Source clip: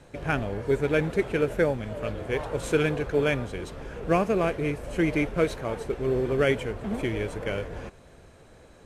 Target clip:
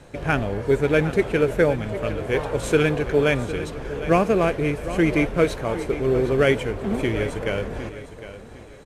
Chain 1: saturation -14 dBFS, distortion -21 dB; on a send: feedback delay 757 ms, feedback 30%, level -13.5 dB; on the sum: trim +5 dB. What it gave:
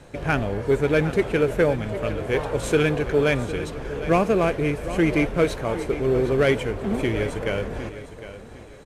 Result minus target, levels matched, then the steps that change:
saturation: distortion +16 dB
change: saturation -5 dBFS, distortion -37 dB

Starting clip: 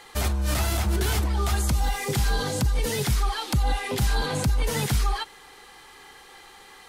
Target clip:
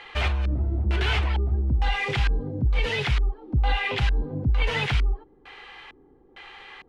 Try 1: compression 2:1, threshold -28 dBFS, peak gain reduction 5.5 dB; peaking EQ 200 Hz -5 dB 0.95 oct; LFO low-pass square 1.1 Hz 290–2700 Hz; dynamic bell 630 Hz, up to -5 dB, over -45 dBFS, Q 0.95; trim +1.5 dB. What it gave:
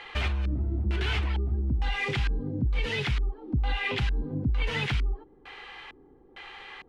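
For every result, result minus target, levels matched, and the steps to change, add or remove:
compression: peak gain reduction +5.5 dB; 250 Hz band +3.5 dB
remove: compression 2:1, threshold -28 dBFS, peak gain reduction 5.5 dB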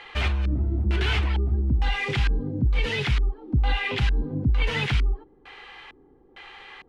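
250 Hz band +3.0 dB
change: dynamic bell 260 Hz, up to -5 dB, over -45 dBFS, Q 0.95

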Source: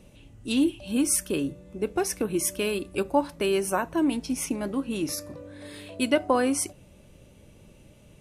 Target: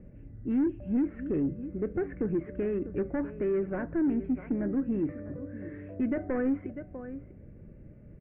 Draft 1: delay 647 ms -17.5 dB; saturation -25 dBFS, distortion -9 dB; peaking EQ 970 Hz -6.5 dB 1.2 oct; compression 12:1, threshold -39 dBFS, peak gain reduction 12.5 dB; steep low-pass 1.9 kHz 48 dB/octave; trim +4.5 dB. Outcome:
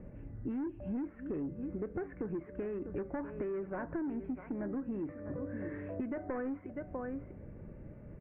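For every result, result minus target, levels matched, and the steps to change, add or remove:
compression: peak gain reduction +12.5 dB; 1 kHz band +6.5 dB
remove: compression 12:1, threshold -39 dBFS, peak gain reduction 12.5 dB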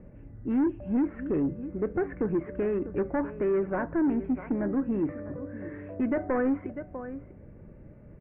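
1 kHz band +6.5 dB
change: peaking EQ 970 Hz -17.5 dB 1.2 oct

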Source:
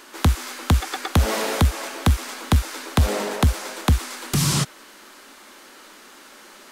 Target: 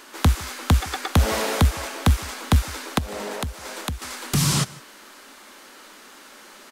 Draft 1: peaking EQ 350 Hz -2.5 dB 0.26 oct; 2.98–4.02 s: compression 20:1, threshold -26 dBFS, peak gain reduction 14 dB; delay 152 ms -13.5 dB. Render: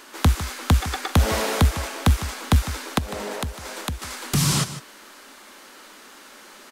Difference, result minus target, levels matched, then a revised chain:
echo-to-direct +8.5 dB
peaking EQ 350 Hz -2.5 dB 0.26 oct; 2.98–4.02 s: compression 20:1, threshold -26 dBFS, peak gain reduction 14 dB; delay 152 ms -22 dB

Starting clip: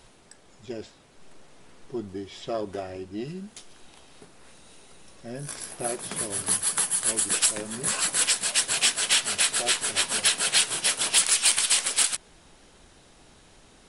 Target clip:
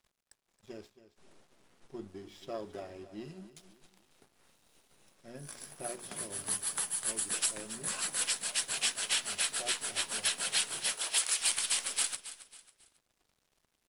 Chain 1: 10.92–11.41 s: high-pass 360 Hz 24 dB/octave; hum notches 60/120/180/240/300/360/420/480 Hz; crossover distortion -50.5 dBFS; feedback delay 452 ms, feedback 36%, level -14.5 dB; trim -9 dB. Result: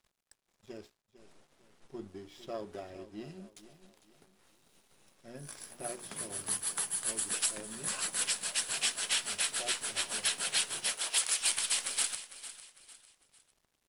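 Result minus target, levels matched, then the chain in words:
echo 179 ms late
10.92–11.41 s: high-pass 360 Hz 24 dB/octave; hum notches 60/120/180/240/300/360/420/480 Hz; crossover distortion -50.5 dBFS; feedback delay 273 ms, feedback 36%, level -14.5 dB; trim -9 dB

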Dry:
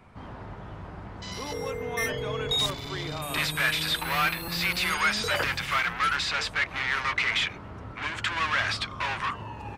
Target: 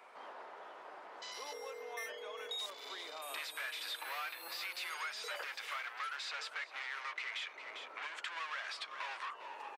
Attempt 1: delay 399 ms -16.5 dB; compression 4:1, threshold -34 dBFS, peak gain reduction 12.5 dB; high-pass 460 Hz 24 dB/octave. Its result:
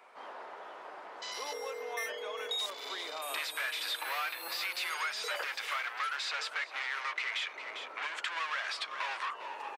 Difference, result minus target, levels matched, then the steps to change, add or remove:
compression: peak gain reduction -6.5 dB
change: compression 4:1, threshold -42.5 dBFS, peak gain reduction 18.5 dB

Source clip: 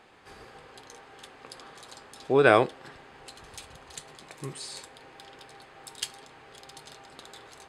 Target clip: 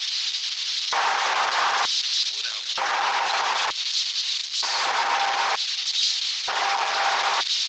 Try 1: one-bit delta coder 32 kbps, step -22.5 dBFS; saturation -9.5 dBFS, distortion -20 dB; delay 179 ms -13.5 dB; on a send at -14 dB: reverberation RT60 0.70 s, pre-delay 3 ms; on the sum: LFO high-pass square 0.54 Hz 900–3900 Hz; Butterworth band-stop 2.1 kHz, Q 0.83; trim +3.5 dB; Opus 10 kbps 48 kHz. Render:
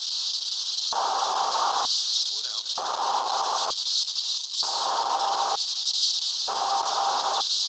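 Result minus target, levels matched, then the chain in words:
2 kHz band -13.5 dB
one-bit delta coder 32 kbps, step -22.5 dBFS; saturation -9.5 dBFS, distortion -20 dB; delay 179 ms -13.5 dB; on a send at -14 dB: reverberation RT60 0.70 s, pre-delay 3 ms; on the sum: LFO high-pass square 0.54 Hz 900–3900 Hz; trim +3.5 dB; Opus 10 kbps 48 kHz

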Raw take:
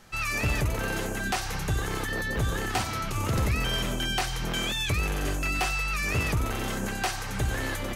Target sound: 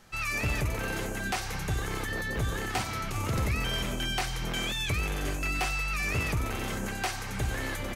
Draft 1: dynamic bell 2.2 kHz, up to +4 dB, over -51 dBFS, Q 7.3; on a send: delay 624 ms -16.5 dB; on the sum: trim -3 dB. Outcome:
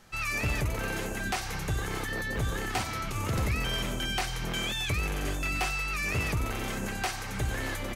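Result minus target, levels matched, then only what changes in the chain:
echo 236 ms late
change: delay 388 ms -16.5 dB

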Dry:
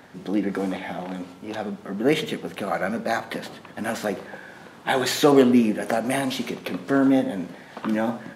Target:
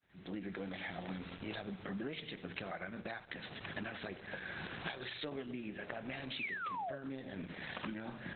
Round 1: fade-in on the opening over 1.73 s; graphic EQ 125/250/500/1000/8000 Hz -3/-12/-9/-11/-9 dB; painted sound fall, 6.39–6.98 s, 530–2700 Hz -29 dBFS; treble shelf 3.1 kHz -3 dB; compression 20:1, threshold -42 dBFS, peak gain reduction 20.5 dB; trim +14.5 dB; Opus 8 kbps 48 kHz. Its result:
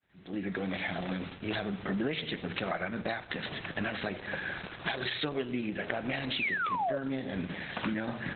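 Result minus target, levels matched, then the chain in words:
compression: peak gain reduction -9.5 dB
fade-in on the opening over 1.73 s; graphic EQ 125/250/500/1000/8000 Hz -3/-12/-9/-11/-9 dB; painted sound fall, 6.39–6.98 s, 530–2700 Hz -29 dBFS; treble shelf 3.1 kHz -3 dB; compression 20:1, threshold -52 dBFS, peak gain reduction 30 dB; trim +14.5 dB; Opus 8 kbps 48 kHz

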